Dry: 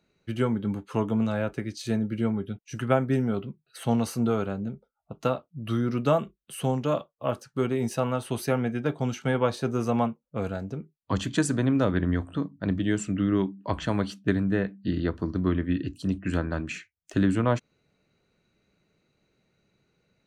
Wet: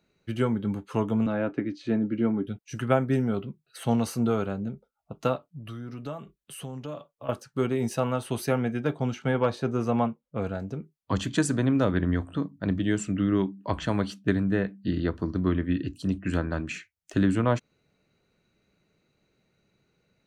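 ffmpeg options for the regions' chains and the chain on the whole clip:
ffmpeg -i in.wav -filter_complex "[0:a]asettb=1/sr,asplit=3[link_01][link_02][link_03];[link_01]atrim=end=1.264[link_04];[link_02]atrim=start=1.26:end=2.47,asetpts=PTS-STARTPTS,afade=type=in:duration=0.004:curve=qsin,afade=type=out:start_time=1.206:duration=0.004:curve=qsin,highpass=140,lowpass=2600,equalizer=frequency=290:width_type=o:width=0.31:gain=13[link_05];[link_03]atrim=start=2.466[link_06];[link_04][link_05]acrossfade=duration=0.004:curve1=hsin:curve2=qsin[link_07];[link_07][link_06]acrossfade=duration=0.004:curve1=qsin:curve2=hsin,asettb=1/sr,asplit=3[link_08][link_09][link_10];[link_08]atrim=end=5.364[link_11];[link_09]atrim=start=5.36:end=7.29,asetpts=PTS-STARTPTS,afade=type=in:duration=0.004:curve=qsin,afade=type=out:start_time=1.926:duration=0.004:curve=qsin,acompressor=threshold=-40dB:ratio=2.5:attack=3.2:release=140:knee=1:detection=peak,aecho=1:1:7:0.33,atrim=end_sample=85113[link_12];[link_10]atrim=start=7.286[link_13];[link_11][link_12]acrossfade=duration=0.004:curve1=hsin:curve2=qsin[link_14];[link_14][link_13]acrossfade=duration=0.004:curve1=qsin:curve2=hsin,asettb=1/sr,asplit=3[link_15][link_16][link_17];[link_15]atrim=end=8.984[link_18];[link_16]atrim=start=8.98:end=10.6,asetpts=PTS-STARTPTS,afade=type=in:duration=0.004:curve=qsin,afade=type=out:start_time=1.616:duration=0.004:curve=qsin,asoftclip=type=hard:threshold=-13dB,highshelf=frequency=6000:gain=-11[link_19];[link_17]atrim=start=10.596[link_20];[link_18][link_19]acrossfade=duration=0.004:curve1=hsin:curve2=qsin[link_21];[link_21][link_20]acrossfade=duration=0.004:curve1=qsin:curve2=hsin" out.wav

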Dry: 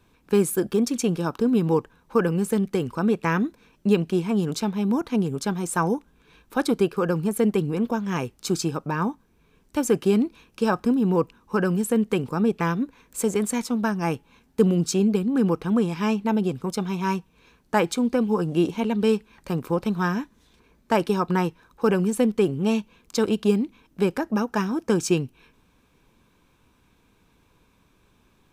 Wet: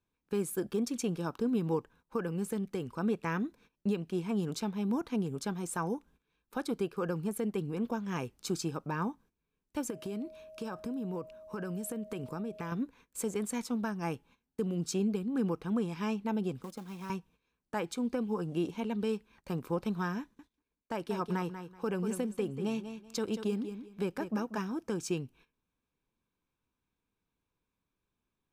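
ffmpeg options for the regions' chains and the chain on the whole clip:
ffmpeg -i in.wav -filter_complex "[0:a]asettb=1/sr,asplit=3[link_01][link_02][link_03];[link_01]atrim=end=9.904[link_04];[link_02]atrim=start=9.9:end=12.72,asetpts=PTS-STARTPTS,afade=type=in:duration=0.004:curve=qsin,afade=type=out:start_time=2.816:duration=0.004:curve=qsin,highshelf=frequency=7800:gain=3.5,acompressor=threshold=-25dB:ratio=10:attack=3.2:release=140:knee=1:detection=peak,aeval=exprs='val(0)+0.01*sin(2*PI*630*n/s)':channel_layout=same[link_05];[link_03]atrim=start=12.716[link_06];[link_04][link_05]acrossfade=duration=0.004:curve1=hsin:curve2=qsin[link_07];[link_07][link_06]acrossfade=duration=0.004:curve1=qsin:curve2=hsin,asettb=1/sr,asplit=3[link_08][link_09][link_10];[link_08]atrim=end=16.624[link_11];[link_09]atrim=start=16.62:end=17.1,asetpts=PTS-STARTPTS,afade=type=in:duration=0.004:curve=qsin,afade=type=out:start_time=0.476:duration=0.004:curve=qsin,aecho=1:1:3.7:0.41,atrim=end_sample=21168,acrossover=split=120|1700[link_12][link_13][link_14];[link_12]acompressor=threshold=-58dB:ratio=4[link_15];[link_13]acompressor=threshold=-33dB:ratio=4[link_16];[link_14]acompressor=threshold=-48dB:ratio=4[link_17];[link_15][link_16][link_17]amix=inputs=3:normalize=0,acrusher=bits=4:mode=log:mix=0:aa=0.000001[link_18];[link_10]atrim=start=17.096[link_19];[link_11][link_18]acrossfade=duration=0.004:curve1=hsin:curve2=qsin[link_20];[link_20][link_19]acrossfade=duration=0.004:curve1=qsin:curve2=hsin,asettb=1/sr,asplit=3[link_21][link_22][link_23];[link_21]atrim=end=20.204[link_24];[link_22]atrim=start=20.2:end=24.58,asetpts=PTS-STARTPTS,afade=type=in:duration=0.004:curve=qsin,afade=type=out:start_time=4.376:duration=0.004:curve=qsin,agate=range=-33dB:threshold=-54dB:ratio=3:release=100:detection=peak,aecho=1:1:189|378|567:0.282|0.0535|0.0102,atrim=end_sample=193158[link_25];[link_23]atrim=start=24.576[link_26];[link_24][link_25]acrossfade=duration=0.004:curve1=hsin:curve2=qsin[link_27];[link_27][link_26]acrossfade=duration=0.004:curve1=qsin:curve2=hsin,agate=range=-16dB:threshold=-48dB:ratio=16:detection=peak,alimiter=limit=-14dB:level=0:latency=1:release=383,volume=-8.5dB" out.wav

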